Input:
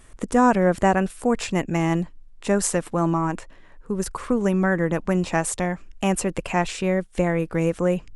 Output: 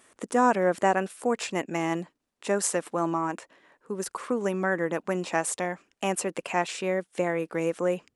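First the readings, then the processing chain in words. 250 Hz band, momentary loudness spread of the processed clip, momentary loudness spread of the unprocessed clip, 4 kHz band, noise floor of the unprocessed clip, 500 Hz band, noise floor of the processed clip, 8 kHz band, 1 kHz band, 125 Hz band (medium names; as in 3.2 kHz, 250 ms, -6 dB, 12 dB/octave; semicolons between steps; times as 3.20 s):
-8.5 dB, 10 LU, 9 LU, -3.0 dB, -47 dBFS, -3.5 dB, -78 dBFS, -3.0 dB, -3.0 dB, -12.0 dB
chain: high-pass 290 Hz 12 dB/octave; trim -3 dB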